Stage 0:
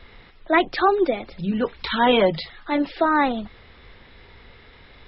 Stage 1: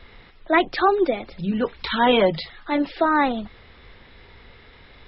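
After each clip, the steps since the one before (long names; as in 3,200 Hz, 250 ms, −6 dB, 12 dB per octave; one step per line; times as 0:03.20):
no processing that can be heard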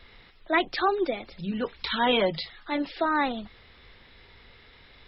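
high-shelf EQ 2,600 Hz +8 dB
level −7 dB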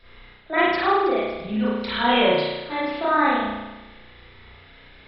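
spring reverb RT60 1.1 s, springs 33 ms, chirp 20 ms, DRR −10 dB
level −4.5 dB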